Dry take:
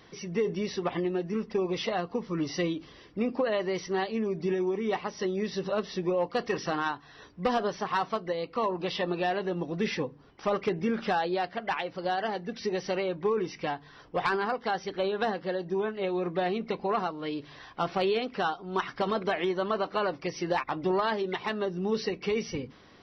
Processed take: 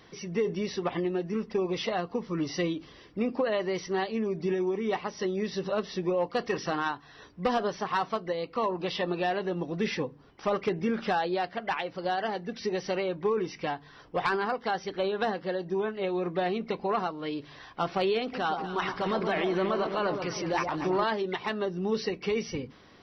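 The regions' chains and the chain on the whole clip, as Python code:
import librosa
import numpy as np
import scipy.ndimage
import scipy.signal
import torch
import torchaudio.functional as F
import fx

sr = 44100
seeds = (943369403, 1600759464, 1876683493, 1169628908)

y = fx.chain(x, sr, fx.transient(attack_db=-4, sustain_db=6),
    fx.echo_alternate(ms=121, hz=1100.0, feedback_pct=63, wet_db=-5.5), at=(18.21, 21.04))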